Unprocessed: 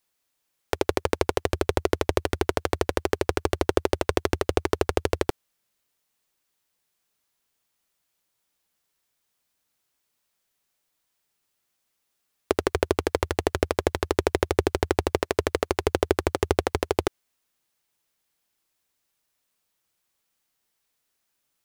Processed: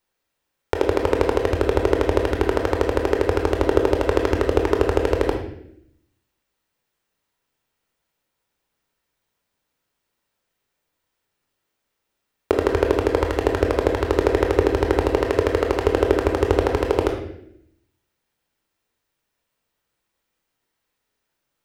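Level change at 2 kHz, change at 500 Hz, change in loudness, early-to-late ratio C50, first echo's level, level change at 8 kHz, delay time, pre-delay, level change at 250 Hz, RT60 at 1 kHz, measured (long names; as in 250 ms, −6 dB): +3.0 dB, +6.5 dB, +5.5 dB, 6.0 dB, no echo audible, −4.0 dB, no echo audible, 18 ms, +6.0 dB, 0.65 s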